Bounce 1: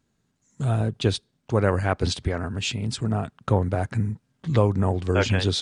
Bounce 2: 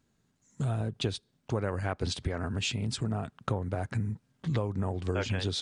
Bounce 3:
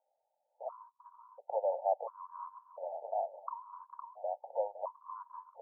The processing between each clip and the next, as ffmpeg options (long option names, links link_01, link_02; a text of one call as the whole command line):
ffmpeg -i in.wav -af "acompressor=threshold=-27dB:ratio=4,volume=-1dB" out.wav
ffmpeg -i in.wav -filter_complex "[0:a]asuperpass=centerf=760:order=12:qfactor=1.4,asplit=2[link_01][link_02];[link_02]aecho=0:1:510|1020|1530:0.501|0.125|0.0313[link_03];[link_01][link_03]amix=inputs=2:normalize=0,afftfilt=real='re*gt(sin(2*PI*0.72*pts/sr)*(1-2*mod(floor(b*sr/1024/920),2)),0)':imag='im*gt(sin(2*PI*0.72*pts/sr)*(1-2*mod(floor(b*sr/1024/920),2)),0)':win_size=1024:overlap=0.75,volume=7dB" out.wav